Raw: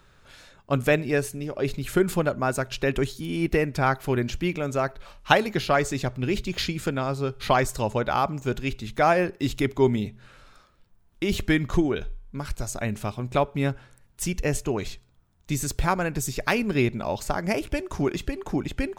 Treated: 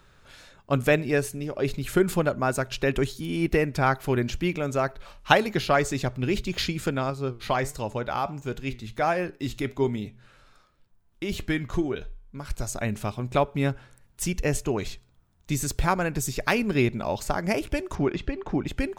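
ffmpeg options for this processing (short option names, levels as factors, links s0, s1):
-filter_complex "[0:a]asettb=1/sr,asplit=3[s0][s1][s2];[s0]atrim=end=7.104[s3];[s1]atrim=start=7.1:end=12.5,asetpts=PTS-STARTPTS,afade=t=in:d=0.004:c=qsin,afade=t=out:st=5.396:d=0.004:c=qsin,flanger=delay=6.3:depth=2.7:regen=83:speed=1.4:shape=sinusoidal[s4];[s2]atrim=start=12.496[s5];[s3][s4]acrossfade=d=0.004:c1=hsin:c2=qsin[s6];[s6][s5]acrossfade=d=0.004:c1=qsin:c2=hsin,asettb=1/sr,asplit=3[s7][s8][s9];[s7]atrim=end=17.954[s10];[s8]atrim=start=17.95:end=18.67,asetpts=PTS-STARTPTS,afade=t=in:d=0.004:c=qsin,afade=t=out:st=0.716:d=0.004:c=qsin,lowpass=3500[s11];[s9]atrim=start=18.666[s12];[s10][s11]acrossfade=d=0.004:c1=hsin:c2=qsin[s13];[s13][s12]acrossfade=d=0.004:c1=qsin:c2=hsin"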